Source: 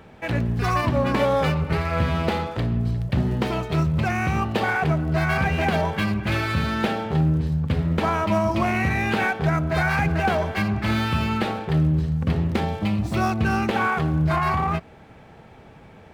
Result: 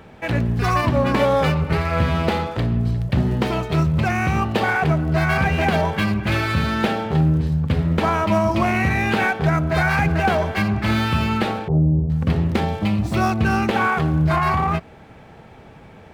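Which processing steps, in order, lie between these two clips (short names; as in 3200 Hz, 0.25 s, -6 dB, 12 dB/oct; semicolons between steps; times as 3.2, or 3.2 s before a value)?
11.68–12.1 inverse Chebyshev low-pass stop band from 2000 Hz, stop band 50 dB; gain +3 dB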